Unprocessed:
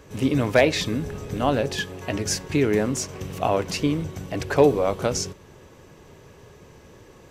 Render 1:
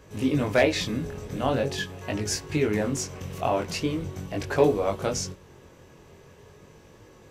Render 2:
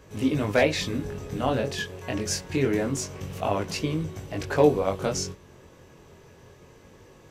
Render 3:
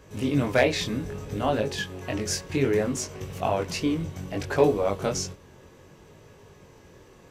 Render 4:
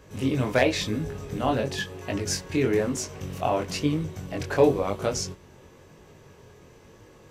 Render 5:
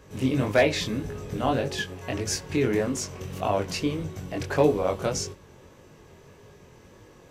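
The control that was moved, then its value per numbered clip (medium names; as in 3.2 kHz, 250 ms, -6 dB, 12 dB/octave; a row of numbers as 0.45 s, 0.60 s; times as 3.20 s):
chorus, rate: 0.42 Hz, 0.25 Hz, 0.64 Hz, 0.99 Hz, 1.7 Hz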